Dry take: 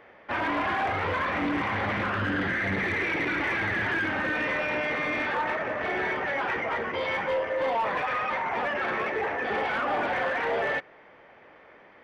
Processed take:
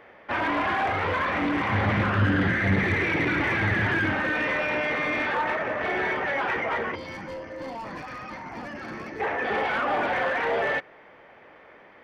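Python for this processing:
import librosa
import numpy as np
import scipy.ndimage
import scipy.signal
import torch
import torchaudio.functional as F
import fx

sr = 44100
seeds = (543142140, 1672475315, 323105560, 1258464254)

y = fx.peak_eq(x, sr, hz=110.0, db=9.0, octaves=2.1, at=(1.68, 4.15))
y = fx.spec_box(y, sr, start_s=6.95, length_s=2.25, low_hz=360.0, high_hz=4100.0, gain_db=-12)
y = y * librosa.db_to_amplitude(2.0)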